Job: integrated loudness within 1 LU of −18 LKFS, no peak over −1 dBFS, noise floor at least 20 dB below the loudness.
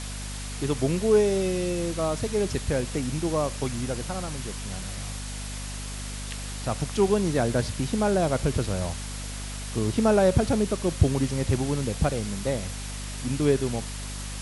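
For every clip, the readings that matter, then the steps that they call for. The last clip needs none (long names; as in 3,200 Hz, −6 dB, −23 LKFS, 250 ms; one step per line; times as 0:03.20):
mains hum 50 Hz; hum harmonics up to 250 Hz; level of the hum −33 dBFS; background noise floor −35 dBFS; target noise floor −47 dBFS; integrated loudness −27.0 LKFS; sample peak −5.5 dBFS; target loudness −18.0 LKFS
→ mains-hum notches 50/100/150/200/250 Hz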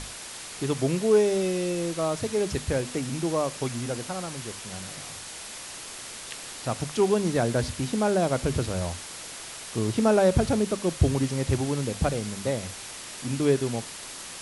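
mains hum none found; background noise floor −40 dBFS; target noise floor −48 dBFS
→ broadband denoise 8 dB, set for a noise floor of −40 dBFS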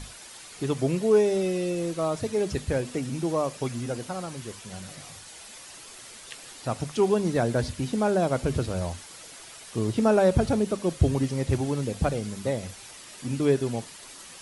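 background noise floor −46 dBFS; target noise floor −47 dBFS
→ broadband denoise 6 dB, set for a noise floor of −46 dBFS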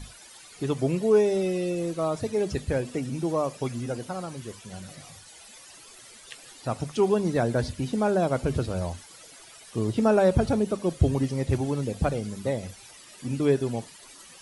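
background noise floor −49 dBFS; integrated loudness −26.5 LKFS; sample peak −8.0 dBFS; target loudness −18.0 LKFS
→ level +8.5 dB
brickwall limiter −1 dBFS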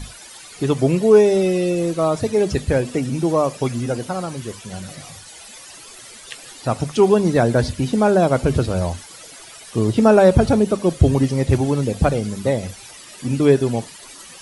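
integrated loudness −18.5 LKFS; sample peak −1.0 dBFS; background noise floor −41 dBFS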